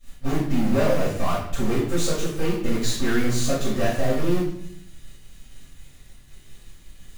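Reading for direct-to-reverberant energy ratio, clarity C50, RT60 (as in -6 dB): -13.0 dB, 3.0 dB, 0.65 s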